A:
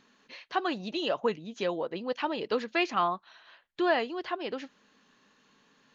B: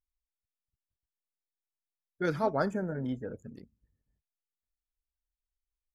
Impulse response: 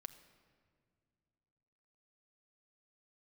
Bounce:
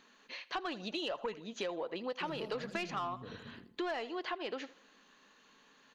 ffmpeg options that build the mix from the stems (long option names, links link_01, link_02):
-filter_complex "[0:a]equalizer=frequency=84:width=0.45:gain=-11.5,bandreject=frequency=5300:width=13,asoftclip=type=tanh:threshold=-22.5dB,volume=1dB,asplit=3[link_01][link_02][link_03];[link_02]volume=-16.5dB[link_04];[link_03]volume=-19.5dB[link_05];[1:a]acrossover=split=230|3000[link_06][link_07][link_08];[link_07]acompressor=threshold=-40dB:ratio=6[link_09];[link_06][link_09][link_08]amix=inputs=3:normalize=0,volume=-6.5dB,asplit=2[link_10][link_11];[link_11]volume=-7dB[link_12];[2:a]atrim=start_sample=2205[link_13];[link_04][link_13]afir=irnorm=-1:irlink=0[link_14];[link_05][link_12]amix=inputs=2:normalize=0,aecho=0:1:80|160|240|320|400:1|0.32|0.102|0.0328|0.0105[link_15];[link_01][link_10][link_14][link_15]amix=inputs=4:normalize=0,acompressor=threshold=-35dB:ratio=6"